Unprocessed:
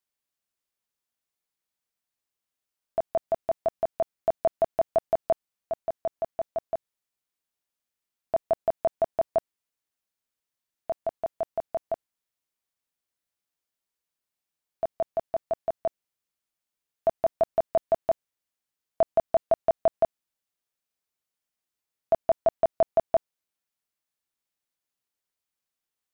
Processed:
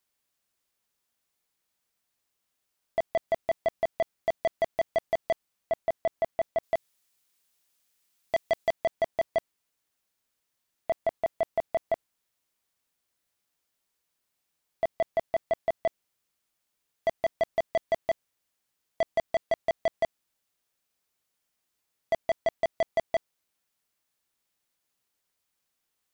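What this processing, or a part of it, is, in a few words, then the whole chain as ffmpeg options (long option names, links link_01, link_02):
saturation between pre-emphasis and de-emphasis: -filter_complex "[0:a]highshelf=frequency=2100:gain=9,asoftclip=type=tanh:threshold=-27dB,highshelf=frequency=2100:gain=-9,asettb=1/sr,asplit=3[link_01][link_02][link_03];[link_01]atrim=end=6.634[link_04];[link_02]atrim=start=6.63:end=8.71,asetpts=PTS-STARTPTS,afade=type=in:duration=0.004:curve=qsin,afade=type=out:start_time=2.076:duration=0.004:curve=qsin,highshelf=frequency=2100:gain=8[link_05];[link_03]atrim=start=8.706[link_06];[link_04][link_05]acrossfade=duration=0.004:curve1=hsin:curve2=qsin[link_07];[link_07][link_06]acrossfade=duration=0.004:curve1=qsin:curve2=hsin,volume=7dB"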